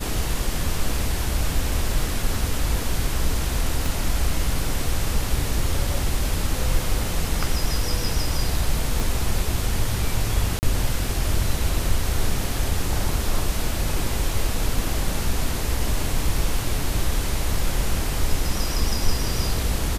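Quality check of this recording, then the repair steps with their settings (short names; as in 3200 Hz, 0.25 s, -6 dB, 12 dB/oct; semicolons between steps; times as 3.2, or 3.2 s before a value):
3.86 pop
9 pop
10.59–10.63 gap 39 ms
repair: de-click; interpolate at 10.59, 39 ms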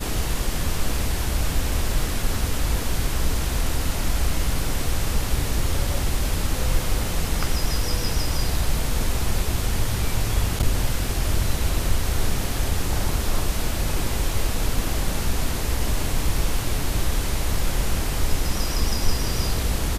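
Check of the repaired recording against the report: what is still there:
3.86 pop
9 pop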